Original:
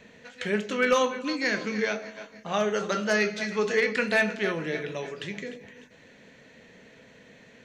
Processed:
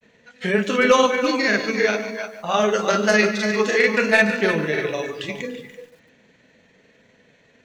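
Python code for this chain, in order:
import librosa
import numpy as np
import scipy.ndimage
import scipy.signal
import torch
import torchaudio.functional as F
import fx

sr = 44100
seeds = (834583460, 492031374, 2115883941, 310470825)

y = x + 10.0 ** (-9.5 / 20.0) * np.pad(x, (int(334 * sr / 1000.0), 0))[:len(x)]
y = fx.granulator(y, sr, seeds[0], grain_ms=100.0, per_s=20.0, spray_ms=27.0, spread_st=0)
y = fx.noise_reduce_blind(y, sr, reduce_db=11)
y = fx.echo_crushed(y, sr, ms=144, feedback_pct=35, bits=9, wet_db=-13.5)
y = y * librosa.db_to_amplitude(8.5)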